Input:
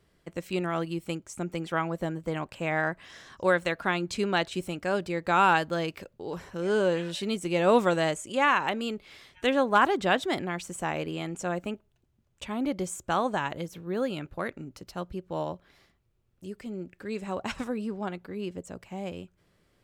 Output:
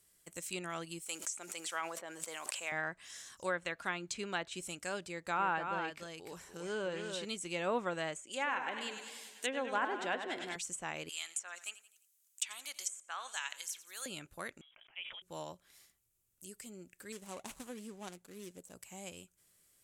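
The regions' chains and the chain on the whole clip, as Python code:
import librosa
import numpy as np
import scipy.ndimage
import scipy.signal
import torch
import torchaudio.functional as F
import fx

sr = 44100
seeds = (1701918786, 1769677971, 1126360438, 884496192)

y = fx.chain(x, sr, fx.block_float(bits=7),
    fx.highpass(hz=530.0, slope=12),
    fx.sustainer(db_per_s=36.0), at=(1.02, 2.72))
y = fx.chain(y, sr, fx.high_shelf(hz=4500.0, db=-8.5),
    fx.echo_single(ms=296, db=-6.0), at=(5.06, 7.25))
y = fx.chain(y, sr, fx.highpass(hz=230.0, slope=12),
    fx.peak_eq(hz=1200.0, db=-8.5, octaves=0.24),
    fx.echo_warbled(ms=99, feedback_pct=64, rate_hz=2.8, cents=106, wet_db=-8.5), at=(8.22, 10.56))
y = fx.chain(y, sr, fx.highpass(hz=1300.0, slope=12),
    fx.high_shelf(hz=2900.0, db=7.5),
    fx.echo_feedback(ms=86, feedback_pct=43, wet_db=-17), at=(11.09, 14.06))
y = fx.chain(y, sr, fx.highpass(hz=920.0, slope=12),
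    fx.freq_invert(carrier_hz=3600),
    fx.sustainer(db_per_s=35.0), at=(14.61, 15.22))
y = fx.chain(y, sr, fx.median_filter(points=25),
    fx.peak_eq(hz=84.0, db=-7.0, octaves=0.89), at=(17.12, 18.74))
y = scipy.signal.lfilter([1.0, -0.9], [1.0], y)
y = fx.env_lowpass_down(y, sr, base_hz=1700.0, full_db=-35.0)
y = fx.high_shelf_res(y, sr, hz=5900.0, db=6.0, q=1.5)
y = F.gain(torch.from_numpy(y), 5.0).numpy()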